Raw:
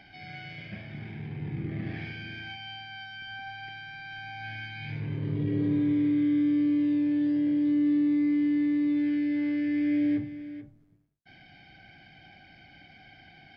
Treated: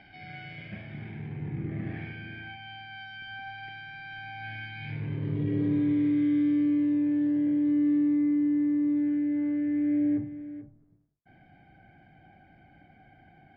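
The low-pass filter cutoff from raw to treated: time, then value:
0:01.01 3,200 Hz
0:01.50 2,200 Hz
0:02.58 2,200 Hz
0:03.09 3,400 Hz
0:06.44 3,400 Hz
0:06.93 1,900 Hz
0:07.95 1,900 Hz
0:08.41 1,200 Hz

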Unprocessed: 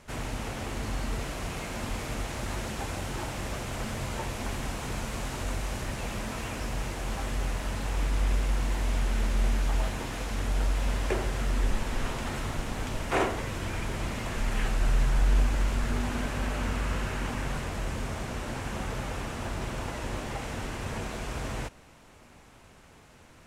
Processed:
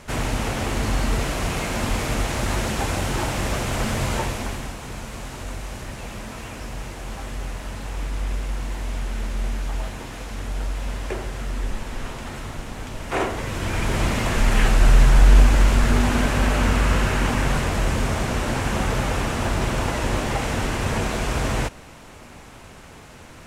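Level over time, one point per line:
0:04.16 +10 dB
0:04.77 0 dB
0:12.95 0 dB
0:13.98 +11 dB

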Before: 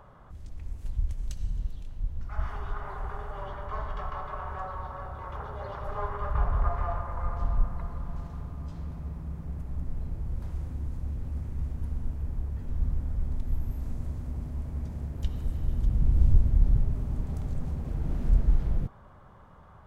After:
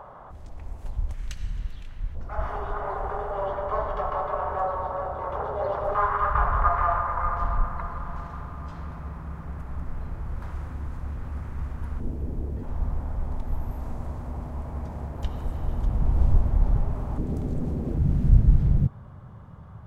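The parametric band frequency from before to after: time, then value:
parametric band +14 dB 2 octaves
790 Hz
from 0:01.14 1,900 Hz
from 0:02.15 580 Hz
from 0:05.95 1,300 Hz
from 0:12.00 370 Hz
from 0:12.63 880 Hz
from 0:17.18 330 Hz
from 0:17.98 120 Hz

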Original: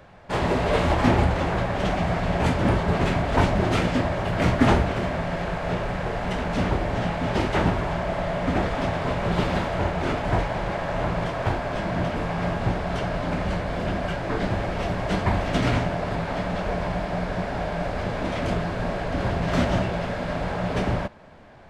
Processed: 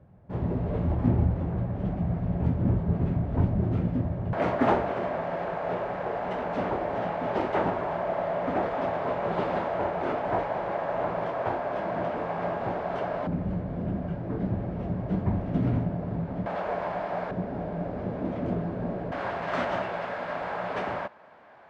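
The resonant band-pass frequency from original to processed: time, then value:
resonant band-pass, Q 0.83
120 Hz
from 0:04.33 660 Hz
from 0:13.27 170 Hz
from 0:16.46 820 Hz
from 0:17.31 260 Hz
from 0:19.12 1,100 Hz

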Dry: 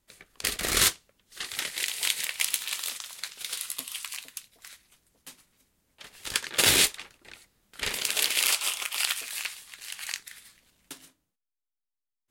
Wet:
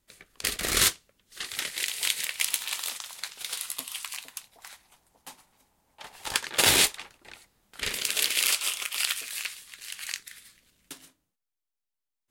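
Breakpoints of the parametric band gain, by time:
parametric band 840 Hz 0.8 octaves
−1.5 dB
from 0:02.48 +5.5 dB
from 0:04.28 +14.5 dB
from 0:06.36 +5.5 dB
from 0:07.80 −5.5 dB
from 0:10.92 +1 dB

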